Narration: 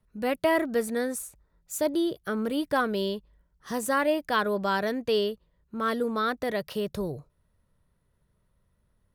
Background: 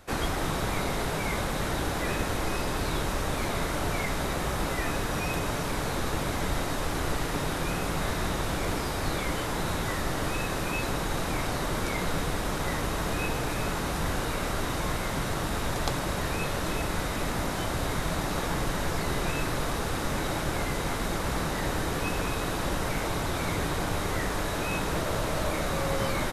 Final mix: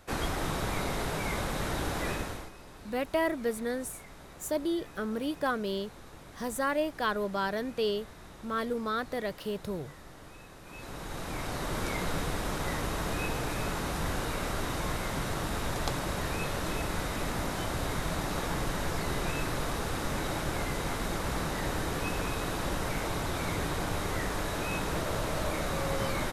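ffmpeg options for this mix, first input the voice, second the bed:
ffmpeg -i stem1.wav -i stem2.wav -filter_complex "[0:a]adelay=2700,volume=-4.5dB[link_01];[1:a]volume=14dB,afade=type=out:start_time=2.07:duration=0.44:silence=0.141254,afade=type=in:start_time=10.63:duration=1.21:silence=0.141254[link_02];[link_01][link_02]amix=inputs=2:normalize=0" out.wav

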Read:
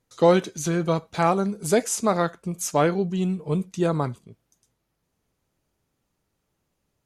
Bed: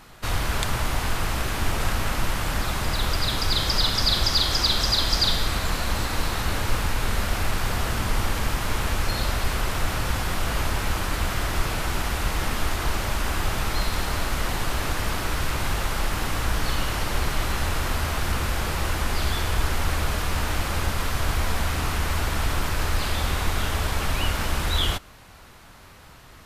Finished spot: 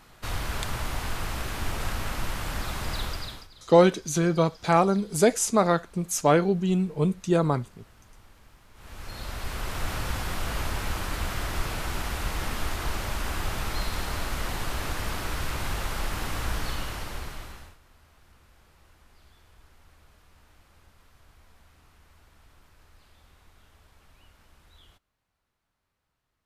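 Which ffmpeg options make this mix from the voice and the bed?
ffmpeg -i stem1.wav -i stem2.wav -filter_complex "[0:a]adelay=3500,volume=0.5dB[link_01];[1:a]volume=19dB,afade=type=out:start_time=2.98:duration=0.5:silence=0.0630957,afade=type=in:start_time=8.74:duration=1.18:silence=0.0562341,afade=type=out:start_time=16.52:duration=1.25:silence=0.0398107[link_02];[link_01][link_02]amix=inputs=2:normalize=0" out.wav

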